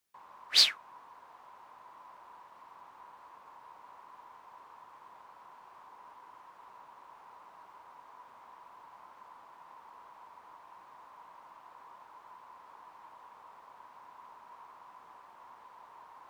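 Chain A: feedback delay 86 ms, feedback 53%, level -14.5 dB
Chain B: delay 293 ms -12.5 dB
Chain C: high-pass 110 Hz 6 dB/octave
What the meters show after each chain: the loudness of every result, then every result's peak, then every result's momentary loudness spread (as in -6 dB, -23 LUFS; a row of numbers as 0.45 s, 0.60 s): -25.5 LUFS, -26.0 LUFS, -25.0 LUFS; -8.5 dBFS, -8.5 dBFS, -8.5 dBFS; 18 LU, 14 LU, 3 LU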